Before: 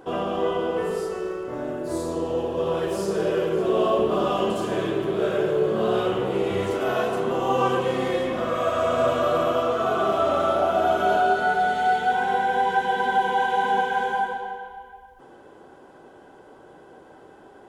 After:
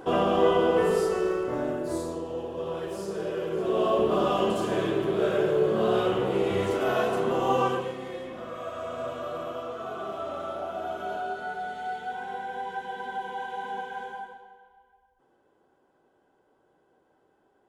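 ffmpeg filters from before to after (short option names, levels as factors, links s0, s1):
-af "volume=2.99,afade=t=out:st=1.38:d=0.85:silence=0.281838,afade=t=in:st=3.37:d=0.75:silence=0.473151,afade=t=out:st=7.53:d=0.43:silence=0.281838,afade=t=out:st=14.03:d=0.45:silence=0.473151"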